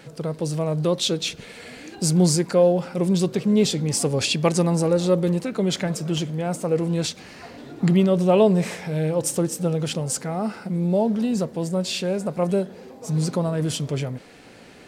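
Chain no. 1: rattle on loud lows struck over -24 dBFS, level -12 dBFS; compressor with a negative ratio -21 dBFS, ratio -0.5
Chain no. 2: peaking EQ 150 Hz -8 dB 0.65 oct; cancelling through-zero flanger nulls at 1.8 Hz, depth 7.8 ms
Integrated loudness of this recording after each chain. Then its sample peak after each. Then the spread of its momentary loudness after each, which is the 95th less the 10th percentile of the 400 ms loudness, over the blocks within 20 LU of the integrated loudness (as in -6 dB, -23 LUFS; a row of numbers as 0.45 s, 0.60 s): -23.0 LUFS, -27.0 LUFS; -7.0 dBFS, -8.5 dBFS; 9 LU, 12 LU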